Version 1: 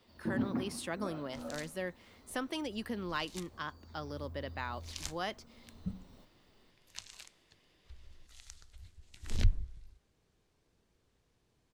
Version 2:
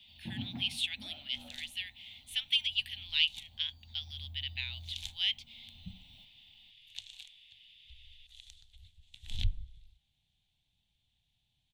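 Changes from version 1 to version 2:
speech: add resonant high-pass 2.4 kHz, resonance Q 2.6; second sound -4.5 dB; master: add FFT filter 140 Hz 0 dB, 270 Hz -11 dB, 440 Hz -24 dB, 800 Hz -3 dB, 1.2 kHz -20 dB, 3.5 kHz +15 dB, 5 kHz -4 dB, 11 kHz -1 dB

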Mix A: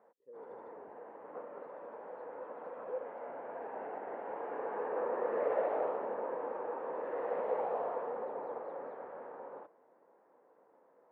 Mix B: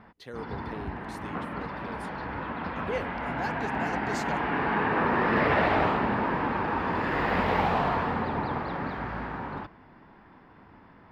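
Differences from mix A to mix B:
speech: remove boxcar filter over 60 samples; master: remove ladder band-pass 550 Hz, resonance 70%

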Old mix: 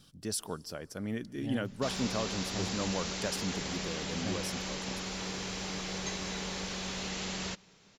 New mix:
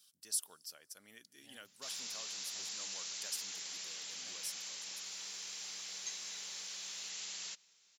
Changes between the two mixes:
speech: send -6.0 dB; master: add differentiator

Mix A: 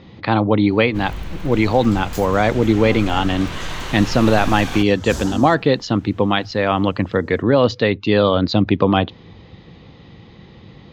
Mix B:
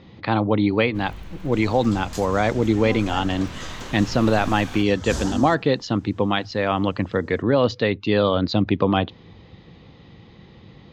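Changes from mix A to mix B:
speech -4.0 dB; first sound -9.0 dB; second sound: add low-pass 9.5 kHz 12 dB/octave

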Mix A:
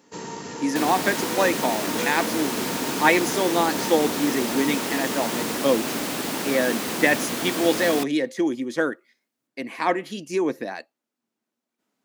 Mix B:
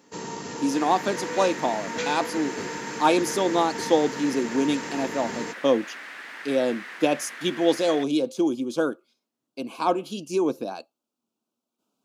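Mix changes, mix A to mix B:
speech: add Butterworth band-stop 1.9 kHz, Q 1.6; second sound: add band-pass filter 1.8 kHz, Q 3.4

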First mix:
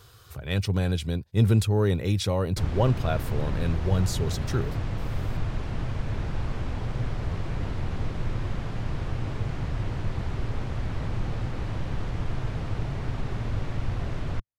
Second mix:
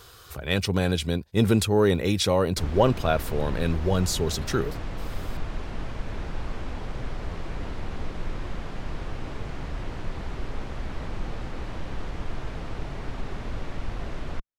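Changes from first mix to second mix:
speech +6.0 dB; master: add peaking EQ 110 Hz -11 dB 1 oct

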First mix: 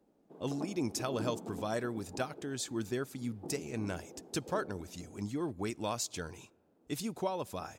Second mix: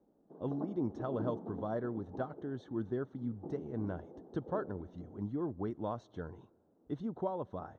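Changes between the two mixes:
speech: add distance through air 200 m; master: add boxcar filter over 18 samples

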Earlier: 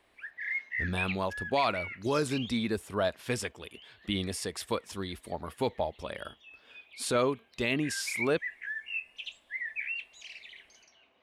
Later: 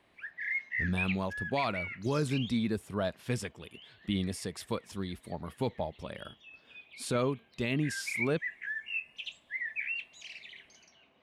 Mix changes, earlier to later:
speech -5.0 dB; master: add peaking EQ 150 Hz +10 dB 1.5 oct

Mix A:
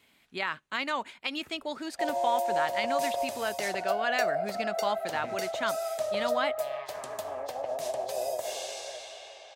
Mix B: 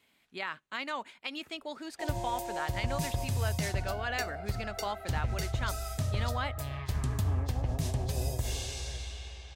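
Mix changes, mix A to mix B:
speech -5.0 dB; background: remove resonant high-pass 610 Hz, resonance Q 6.4

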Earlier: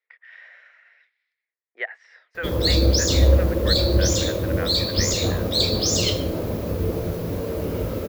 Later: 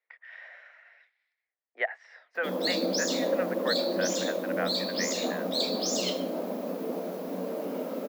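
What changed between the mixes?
speech +6.5 dB; master: add rippled Chebyshev high-pass 180 Hz, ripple 9 dB

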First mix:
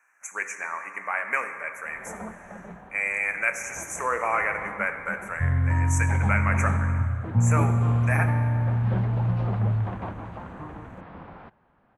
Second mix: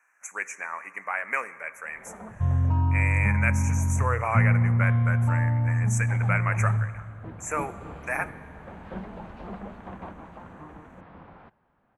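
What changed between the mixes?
speech: send -9.5 dB; first sound -5.0 dB; second sound: entry -3.00 s

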